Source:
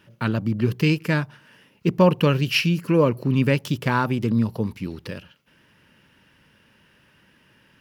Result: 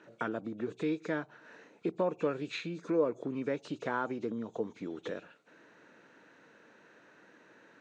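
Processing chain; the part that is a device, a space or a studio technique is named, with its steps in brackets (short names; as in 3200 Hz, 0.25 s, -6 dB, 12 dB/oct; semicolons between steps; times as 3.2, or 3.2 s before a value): hearing aid with frequency lowering (nonlinear frequency compression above 2200 Hz 1.5:1; compressor 2.5:1, threshold -36 dBFS, peak gain reduction 16.5 dB; speaker cabinet 260–6900 Hz, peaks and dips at 310 Hz +7 dB, 460 Hz +8 dB, 700 Hz +9 dB, 1400 Hz +5 dB, 2600 Hz -7 dB); gain -2 dB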